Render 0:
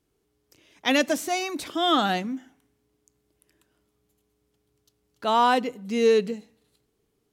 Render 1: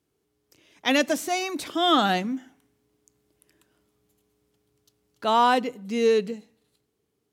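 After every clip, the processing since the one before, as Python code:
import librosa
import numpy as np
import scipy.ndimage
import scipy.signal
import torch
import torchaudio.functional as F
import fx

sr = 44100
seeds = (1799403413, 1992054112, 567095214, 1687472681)

y = scipy.signal.sosfilt(scipy.signal.butter(2, 71.0, 'highpass', fs=sr, output='sos'), x)
y = fx.rider(y, sr, range_db=10, speed_s=2.0)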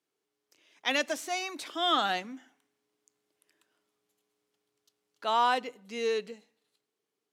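y = fx.weighting(x, sr, curve='A')
y = y * librosa.db_to_amplitude(-5.5)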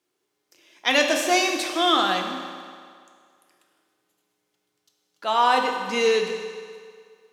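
y = fx.rider(x, sr, range_db=10, speed_s=0.5)
y = fx.rev_fdn(y, sr, rt60_s=2.1, lf_ratio=0.8, hf_ratio=0.85, size_ms=17.0, drr_db=2.0)
y = y * librosa.db_to_amplitude(8.0)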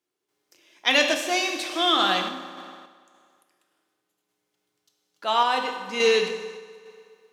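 y = fx.dynamic_eq(x, sr, hz=3200.0, q=1.0, threshold_db=-34.0, ratio=4.0, max_db=4)
y = fx.tremolo_random(y, sr, seeds[0], hz=3.5, depth_pct=55)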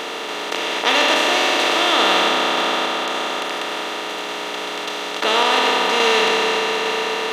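y = fx.bin_compress(x, sr, power=0.2)
y = y * librosa.db_to_amplitude(-3.0)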